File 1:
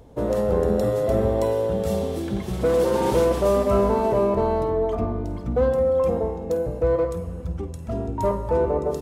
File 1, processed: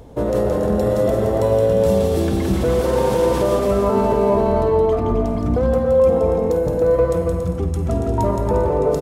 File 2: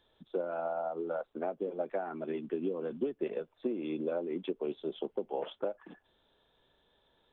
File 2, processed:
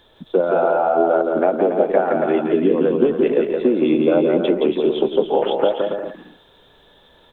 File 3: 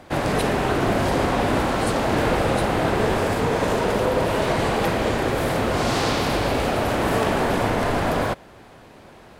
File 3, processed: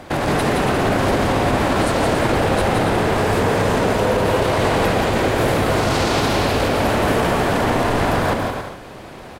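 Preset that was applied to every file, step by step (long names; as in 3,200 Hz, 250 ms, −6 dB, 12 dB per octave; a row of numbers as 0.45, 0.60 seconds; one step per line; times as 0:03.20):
brickwall limiter −19 dBFS
on a send: bouncing-ball delay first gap 170 ms, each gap 0.65×, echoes 5
on the sum: loudness normalisation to −18 LKFS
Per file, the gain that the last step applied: +7.0, +17.0, +7.5 decibels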